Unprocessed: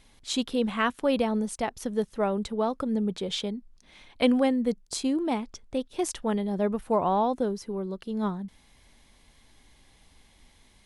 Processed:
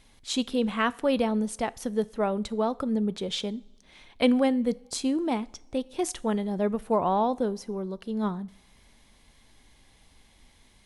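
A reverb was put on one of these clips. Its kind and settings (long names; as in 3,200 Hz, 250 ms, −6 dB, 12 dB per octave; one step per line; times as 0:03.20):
coupled-rooms reverb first 0.5 s, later 2.4 s, from −20 dB, DRR 18 dB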